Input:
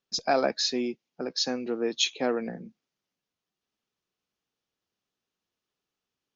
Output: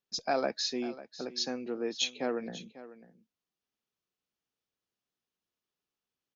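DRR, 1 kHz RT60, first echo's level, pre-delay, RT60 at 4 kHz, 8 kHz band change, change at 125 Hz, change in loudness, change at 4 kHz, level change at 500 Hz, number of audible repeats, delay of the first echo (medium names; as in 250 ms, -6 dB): no reverb, no reverb, -16.0 dB, no reverb, no reverb, no reading, -5.5 dB, -5.5 dB, -5.5 dB, -5.5 dB, 1, 546 ms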